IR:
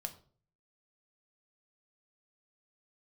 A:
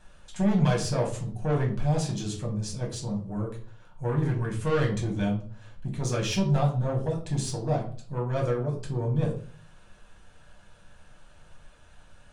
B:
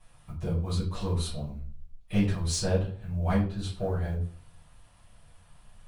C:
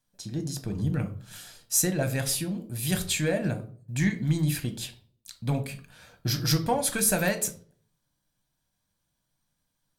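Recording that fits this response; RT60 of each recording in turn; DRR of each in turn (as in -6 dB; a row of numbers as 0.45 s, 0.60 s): C; 0.45 s, 0.45 s, 0.45 s; -1.5 dB, -11.0 dB, 6.0 dB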